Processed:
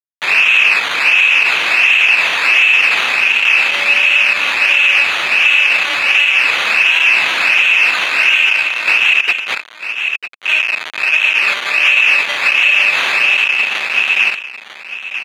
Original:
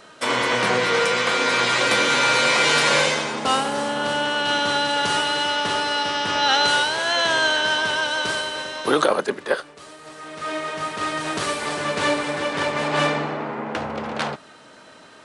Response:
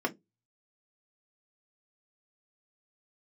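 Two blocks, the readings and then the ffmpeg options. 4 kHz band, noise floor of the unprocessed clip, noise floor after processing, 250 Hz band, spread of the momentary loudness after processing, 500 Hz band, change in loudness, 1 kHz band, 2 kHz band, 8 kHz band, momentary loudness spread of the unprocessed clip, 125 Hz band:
+6.5 dB, -47 dBFS, -34 dBFS, under -10 dB, 9 LU, -8.5 dB, +11.0 dB, -1.5 dB, +13.5 dB, -1.0 dB, 11 LU, under -10 dB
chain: -af "aecho=1:1:5.2:0.78,acrusher=samples=13:mix=1:aa=0.000001:lfo=1:lforange=7.8:lforate=1.4,aeval=exprs='(mod(5.96*val(0)+1,2)-1)/5.96':c=same,acrusher=bits=3:mix=0:aa=0.000001,bandpass=f=2.6k:t=q:w=18:csg=0,aecho=1:1:948:0.237,alimiter=level_in=31.5dB:limit=-1dB:release=50:level=0:latency=1,volume=-1dB"

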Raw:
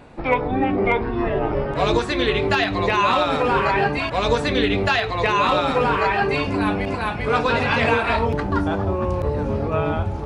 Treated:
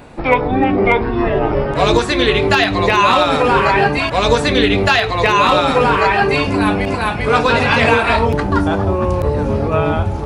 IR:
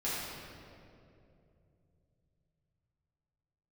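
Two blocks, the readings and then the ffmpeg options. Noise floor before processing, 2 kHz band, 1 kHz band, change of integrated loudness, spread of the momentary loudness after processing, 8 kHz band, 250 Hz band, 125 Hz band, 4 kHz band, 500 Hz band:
-27 dBFS, +6.5 dB, +6.0 dB, +6.0 dB, 5 LU, +10.0 dB, +6.0 dB, +6.0 dB, +7.5 dB, +6.0 dB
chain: -af "highshelf=f=7.6k:g=9,volume=6dB"

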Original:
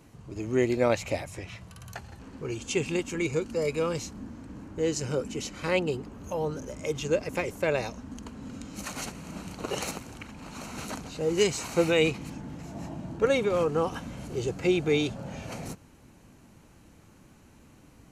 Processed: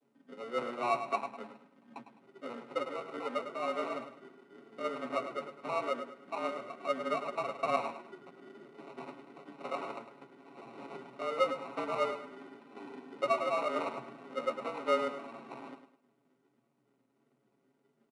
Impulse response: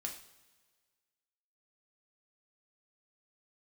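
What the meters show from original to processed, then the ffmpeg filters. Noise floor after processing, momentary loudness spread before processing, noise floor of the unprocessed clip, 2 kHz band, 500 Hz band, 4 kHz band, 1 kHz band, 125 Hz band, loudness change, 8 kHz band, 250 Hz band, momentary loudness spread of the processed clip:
-75 dBFS, 17 LU, -56 dBFS, -7.5 dB, -8.0 dB, -10.5 dB, +2.5 dB, -23.0 dB, -6.5 dB, -21.0 dB, -13.0 dB, 20 LU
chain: -filter_complex "[0:a]acrossover=split=89|310|710|1800[a][b][c][d][e];[a]acompressor=threshold=-50dB:ratio=4[f];[b]acompressor=threshold=-43dB:ratio=4[g];[c]acompressor=threshold=-27dB:ratio=4[h];[d]acompressor=threshold=-38dB:ratio=4[i];[e]acompressor=threshold=-48dB:ratio=4[j];[f][g][h][i][j]amix=inputs=5:normalize=0,flanger=delay=8.8:depth=5.7:regen=25:speed=1.5:shape=sinusoidal,acrusher=samples=28:mix=1:aa=0.000001,acompressor=mode=upward:threshold=-45dB:ratio=2.5,agate=range=-33dB:threshold=-40dB:ratio=3:detection=peak,lowpass=2.8k,aecho=1:1:7:0.67,adynamicequalizer=threshold=0.00398:dfrequency=1200:dqfactor=1:tfrequency=1200:tqfactor=1:attack=5:release=100:ratio=0.375:range=3:mode=boostabove:tftype=bell,afreqshift=120,lowshelf=f=91:g=-6,aecho=1:1:104|208|312|416:0.316|0.108|0.0366|0.0124,volume=-3dB" -ar 22050 -c:a adpcm_ima_wav

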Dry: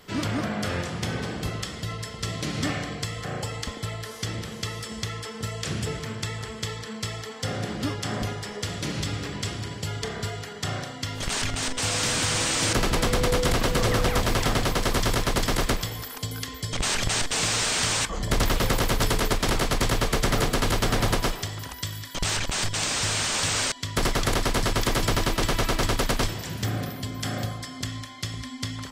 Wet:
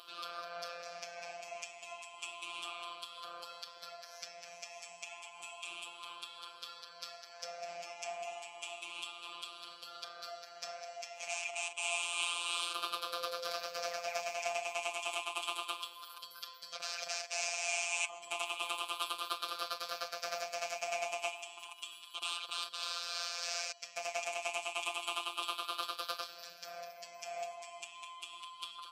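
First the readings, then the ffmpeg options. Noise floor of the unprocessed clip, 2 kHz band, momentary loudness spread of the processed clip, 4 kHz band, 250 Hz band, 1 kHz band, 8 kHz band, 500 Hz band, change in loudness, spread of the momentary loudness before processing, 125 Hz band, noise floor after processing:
-39 dBFS, -11.0 dB, 12 LU, -11.0 dB, -34.5 dB, -10.5 dB, -14.5 dB, -14.0 dB, -13.0 dB, 10 LU, under -40 dB, -54 dBFS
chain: -filter_complex "[0:a]afftfilt=real='re*pow(10,13/40*sin(2*PI*(0.62*log(max(b,1)*sr/1024/100)/log(2)-(0.31)*(pts-256)/sr)))':imag='im*pow(10,13/40*sin(2*PI*(0.62*log(max(b,1)*sr/1024/100)/log(2)-(0.31)*(pts-256)/sr)))':win_size=1024:overlap=0.75,aderivative,asplit=2[a][b];[b]acompressor=mode=upward:threshold=-33dB:ratio=2.5,volume=2dB[c];[a][c]amix=inputs=2:normalize=0,asplit=3[d][e][f];[d]bandpass=f=730:t=q:w=8,volume=0dB[g];[e]bandpass=f=1.09k:t=q:w=8,volume=-6dB[h];[f]bandpass=f=2.44k:t=q:w=8,volume=-9dB[i];[g][h][i]amix=inputs=3:normalize=0,tremolo=f=3.1:d=0.28,afftfilt=real='hypot(re,im)*cos(PI*b)':imag='0':win_size=1024:overlap=0.75,volume=10dB"

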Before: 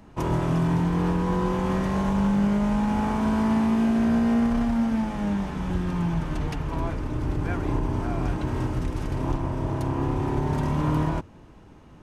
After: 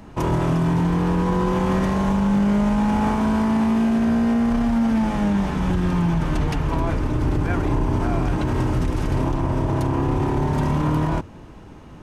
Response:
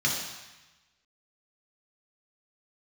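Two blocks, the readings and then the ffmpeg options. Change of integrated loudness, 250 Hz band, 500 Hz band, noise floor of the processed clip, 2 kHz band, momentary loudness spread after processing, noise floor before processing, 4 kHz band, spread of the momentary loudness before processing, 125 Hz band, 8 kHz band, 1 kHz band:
+4.0 dB, +4.0 dB, +4.5 dB, -41 dBFS, +4.5 dB, 4 LU, -49 dBFS, +4.5 dB, 7 LU, +4.5 dB, n/a, +4.5 dB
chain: -af "alimiter=limit=-20.5dB:level=0:latency=1:release=30,volume=7.5dB"

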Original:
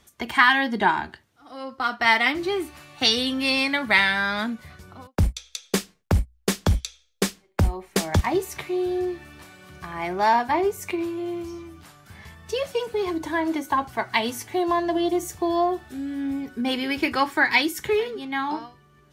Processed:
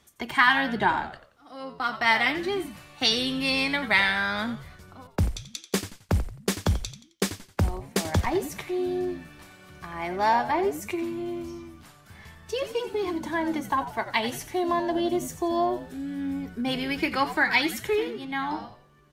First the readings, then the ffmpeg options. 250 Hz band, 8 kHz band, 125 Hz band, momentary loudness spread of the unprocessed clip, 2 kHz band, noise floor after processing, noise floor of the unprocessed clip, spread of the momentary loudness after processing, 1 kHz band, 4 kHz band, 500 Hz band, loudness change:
-2.5 dB, -2.5 dB, -3.0 dB, 13 LU, -2.5 dB, -57 dBFS, -61 dBFS, 14 LU, -2.5 dB, -2.5 dB, -3.0 dB, -2.5 dB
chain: -filter_complex "[0:a]highpass=46,asplit=2[a][b];[b]asplit=4[c][d][e][f];[c]adelay=88,afreqshift=-97,volume=-12dB[g];[d]adelay=176,afreqshift=-194,volume=-21.1dB[h];[e]adelay=264,afreqshift=-291,volume=-30.2dB[i];[f]adelay=352,afreqshift=-388,volume=-39.4dB[j];[g][h][i][j]amix=inputs=4:normalize=0[k];[a][k]amix=inputs=2:normalize=0,volume=-3dB"

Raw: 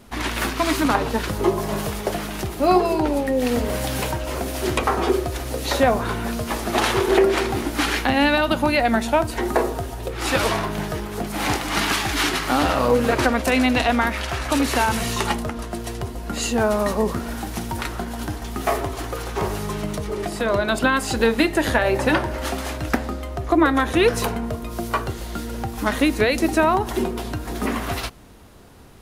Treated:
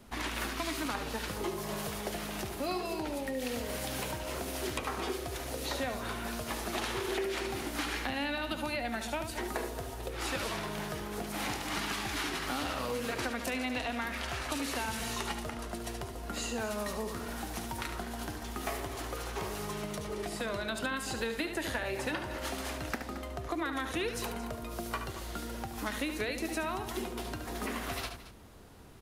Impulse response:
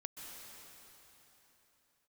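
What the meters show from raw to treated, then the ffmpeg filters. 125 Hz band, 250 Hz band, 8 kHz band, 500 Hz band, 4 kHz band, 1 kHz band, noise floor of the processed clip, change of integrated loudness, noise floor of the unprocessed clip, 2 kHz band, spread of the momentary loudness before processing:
-14.5 dB, -15.5 dB, -9.5 dB, -15.5 dB, -11.0 dB, -14.5 dB, -42 dBFS, -14.0 dB, -32 dBFS, -12.5 dB, 11 LU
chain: -filter_complex "[0:a]aecho=1:1:72|222:0.335|0.141,acrossover=split=350|1800[a][b][c];[a]acompressor=threshold=-33dB:ratio=4[d];[b]acompressor=threshold=-31dB:ratio=4[e];[c]acompressor=threshold=-30dB:ratio=4[f];[d][e][f]amix=inputs=3:normalize=0,volume=-7.5dB"

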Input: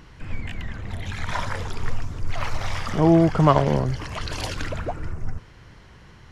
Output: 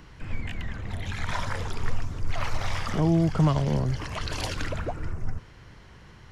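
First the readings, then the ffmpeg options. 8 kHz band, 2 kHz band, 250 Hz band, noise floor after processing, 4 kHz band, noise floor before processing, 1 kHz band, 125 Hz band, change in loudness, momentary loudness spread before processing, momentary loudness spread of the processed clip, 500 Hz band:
-1.5 dB, -2.5 dB, -5.5 dB, -49 dBFS, -2.0 dB, -48 dBFS, -7.5 dB, -2.0 dB, -5.0 dB, 17 LU, 13 LU, -8.5 dB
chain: -filter_complex "[0:a]acrossover=split=230|3000[a][b][c];[b]acompressor=threshold=-27dB:ratio=4[d];[a][d][c]amix=inputs=3:normalize=0,volume=-1.5dB"

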